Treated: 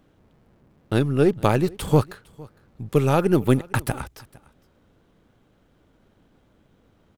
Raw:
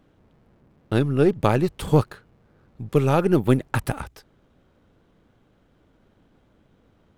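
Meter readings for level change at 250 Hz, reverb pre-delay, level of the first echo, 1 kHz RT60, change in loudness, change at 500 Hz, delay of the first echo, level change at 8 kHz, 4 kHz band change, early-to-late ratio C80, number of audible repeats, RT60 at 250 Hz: 0.0 dB, none, -23.5 dB, none, 0.0 dB, 0.0 dB, 0.458 s, +3.5 dB, +1.5 dB, none, 1, none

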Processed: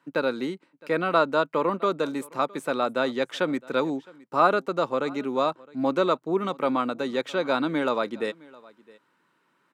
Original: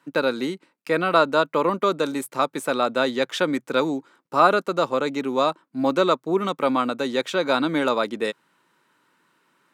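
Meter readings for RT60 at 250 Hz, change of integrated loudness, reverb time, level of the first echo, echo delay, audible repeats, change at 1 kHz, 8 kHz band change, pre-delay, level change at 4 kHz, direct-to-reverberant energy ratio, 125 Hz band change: none, -3.5 dB, none, -23.5 dB, 0.663 s, 1, -3.5 dB, n/a, none, -6.0 dB, none, -3.0 dB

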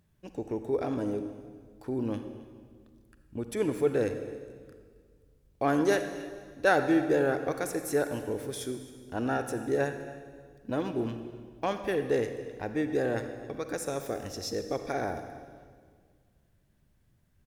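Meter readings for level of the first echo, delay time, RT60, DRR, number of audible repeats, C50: -19.5 dB, 0.268 s, 1.8 s, 7.5 dB, 1, 8.0 dB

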